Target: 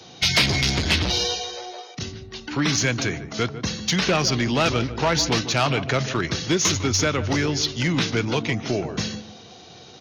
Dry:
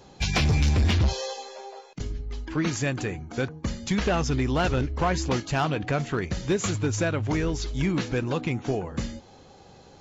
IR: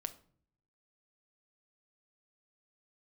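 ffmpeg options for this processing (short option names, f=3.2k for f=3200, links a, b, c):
-filter_complex "[0:a]highpass=f=94:w=0.5412,highpass=f=94:w=1.3066,equalizer=f=4.8k:t=o:w=2.2:g=10.5,acrossover=split=230|1100[a][b][c];[a]asoftclip=type=hard:threshold=-27.5dB[d];[d][b][c]amix=inputs=3:normalize=0,asetrate=40440,aresample=44100,atempo=1.09051,asoftclip=type=tanh:threshold=-13.5dB,asplit=2[e][f];[f]adelay=150,lowpass=f=1.1k:p=1,volume=-11dB,asplit=2[g][h];[h]adelay=150,lowpass=f=1.1k:p=1,volume=0.33,asplit=2[i][j];[j]adelay=150,lowpass=f=1.1k:p=1,volume=0.33,asplit=2[k][l];[l]adelay=150,lowpass=f=1.1k:p=1,volume=0.33[m];[e][g][i][k][m]amix=inputs=5:normalize=0,volume=3.5dB"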